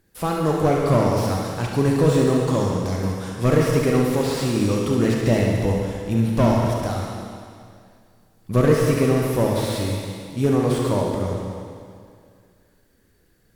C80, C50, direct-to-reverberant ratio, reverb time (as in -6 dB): 2.0 dB, -0.5 dB, -1.5 dB, 2.2 s